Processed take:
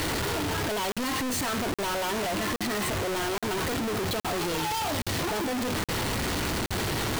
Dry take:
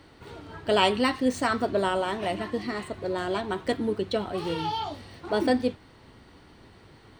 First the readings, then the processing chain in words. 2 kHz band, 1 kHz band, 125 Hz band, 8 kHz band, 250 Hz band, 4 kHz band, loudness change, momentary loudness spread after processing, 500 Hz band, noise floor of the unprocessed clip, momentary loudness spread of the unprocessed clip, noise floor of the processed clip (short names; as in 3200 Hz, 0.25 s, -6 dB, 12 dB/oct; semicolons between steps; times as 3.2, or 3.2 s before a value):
+2.5 dB, -0.5 dB, +6.5 dB, +13.5 dB, -1.5 dB, +2.5 dB, -1.0 dB, 1 LU, -3.0 dB, -54 dBFS, 12 LU, -30 dBFS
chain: infinite clipping; crackling interface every 0.82 s, samples 2048, zero, from 0.92